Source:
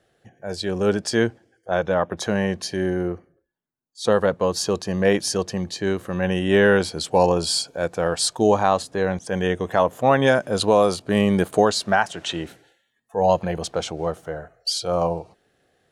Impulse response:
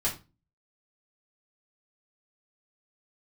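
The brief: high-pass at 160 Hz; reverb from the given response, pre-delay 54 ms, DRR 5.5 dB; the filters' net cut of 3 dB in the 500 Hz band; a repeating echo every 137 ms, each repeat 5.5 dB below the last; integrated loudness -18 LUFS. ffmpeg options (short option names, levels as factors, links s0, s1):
-filter_complex "[0:a]highpass=160,equalizer=f=500:t=o:g=-3.5,aecho=1:1:137|274|411|548|685|822|959:0.531|0.281|0.149|0.079|0.0419|0.0222|0.0118,asplit=2[s0][s1];[1:a]atrim=start_sample=2205,adelay=54[s2];[s1][s2]afir=irnorm=-1:irlink=0,volume=0.237[s3];[s0][s3]amix=inputs=2:normalize=0,volume=1.41"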